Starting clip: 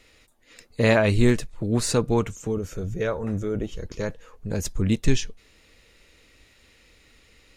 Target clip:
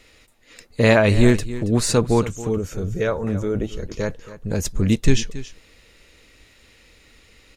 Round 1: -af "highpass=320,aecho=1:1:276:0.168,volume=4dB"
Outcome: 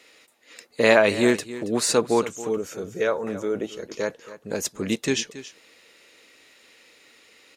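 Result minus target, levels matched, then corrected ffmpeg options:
250 Hz band −2.5 dB
-af "aecho=1:1:276:0.168,volume=4dB"

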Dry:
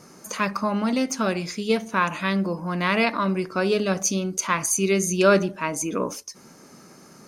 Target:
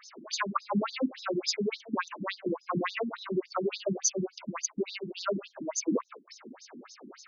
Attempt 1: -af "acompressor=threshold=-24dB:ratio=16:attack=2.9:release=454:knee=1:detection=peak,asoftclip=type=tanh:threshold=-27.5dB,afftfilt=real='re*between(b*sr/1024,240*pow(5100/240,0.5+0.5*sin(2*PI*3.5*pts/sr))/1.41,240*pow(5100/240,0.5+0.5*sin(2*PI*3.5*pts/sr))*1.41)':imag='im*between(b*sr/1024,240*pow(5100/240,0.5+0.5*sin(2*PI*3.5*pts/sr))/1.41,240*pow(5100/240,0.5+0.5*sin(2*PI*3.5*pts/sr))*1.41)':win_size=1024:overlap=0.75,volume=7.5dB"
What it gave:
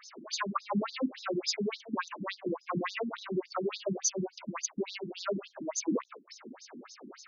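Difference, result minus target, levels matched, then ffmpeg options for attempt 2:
soft clipping: distortion +11 dB
-af "acompressor=threshold=-24dB:ratio=16:attack=2.9:release=454:knee=1:detection=peak,asoftclip=type=tanh:threshold=-19.5dB,afftfilt=real='re*between(b*sr/1024,240*pow(5100/240,0.5+0.5*sin(2*PI*3.5*pts/sr))/1.41,240*pow(5100/240,0.5+0.5*sin(2*PI*3.5*pts/sr))*1.41)':imag='im*between(b*sr/1024,240*pow(5100/240,0.5+0.5*sin(2*PI*3.5*pts/sr))/1.41,240*pow(5100/240,0.5+0.5*sin(2*PI*3.5*pts/sr))*1.41)':win_size=1024:overlap=0.75,volume=7.5dB"

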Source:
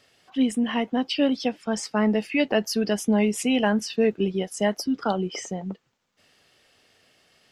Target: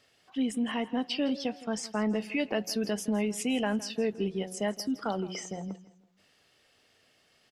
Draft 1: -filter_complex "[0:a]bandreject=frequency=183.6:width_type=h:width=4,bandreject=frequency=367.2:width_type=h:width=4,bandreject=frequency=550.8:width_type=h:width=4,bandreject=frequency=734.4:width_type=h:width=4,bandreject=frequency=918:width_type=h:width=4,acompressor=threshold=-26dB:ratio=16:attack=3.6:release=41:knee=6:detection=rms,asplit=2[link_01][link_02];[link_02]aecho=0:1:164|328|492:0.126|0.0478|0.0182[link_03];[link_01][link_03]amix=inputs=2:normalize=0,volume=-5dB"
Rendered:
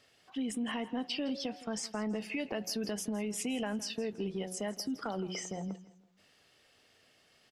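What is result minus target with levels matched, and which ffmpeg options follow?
downward compressor: peak gain reduction +7.5 dB
-filter_complex "[0:a]bandreject=frequency=183.6:width_type=h:width=4,bandreject=frequency=367.2:width_type=h:width=4,bandreject=frequency=550.8:width_type=h:width=4,bandreject=frequency=734.4:width_type=h:width=4,bandreject=frequency=918:width_type=h:width=4,acompressor=threshold=-17.5dB:ratio=16:attack=3.6:release=41:knee=6:detection=rms,asplit=2[link_01][link_02];[link_02]aecho=0:1:164|328|492:0.126|0.0478|0.0182[link_03];[link_01][link_03]amix=inputs=2:normalize=0,volume=-5dB"

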